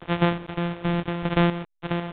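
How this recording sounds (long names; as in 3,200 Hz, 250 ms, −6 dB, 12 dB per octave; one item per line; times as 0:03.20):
a buzz of ramps at a fixed pitch in blocks of 256 samples
sample-and-hold tremolo 4 Hz, depth 75%
a quantiser's noise floor 8 bits, dither none
A-law companding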